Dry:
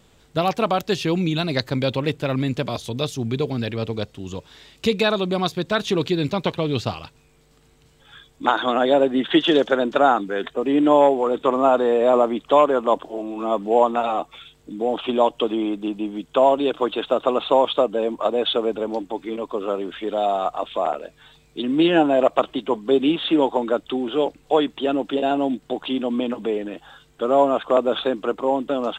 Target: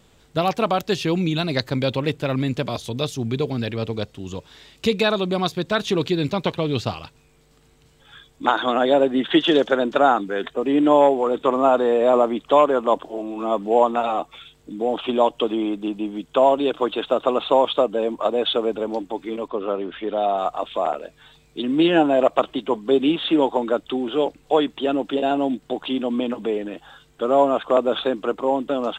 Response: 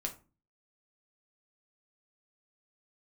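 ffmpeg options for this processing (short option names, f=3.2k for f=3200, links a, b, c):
-filter_complex "[0:a]asettb=1/sr,asplit=3[a][b][c];[a]atrim=end=19.484[d];[b]atrim=start=19.48:end=20.38,asetpts=PTS-STARTPTS,afade=t=in:d=0.004:c=qsin,afade=t=out:st=0.896:d=0.004:c=qsin,lowpass=3.6k[e];[c]atrim=start=20.376[f];[d][e]acrossfade=d=0.004:c1=hsin:c2=qsin[g];[g][f]acrossfade=d=0.004:c1=qsin:c2=hsin"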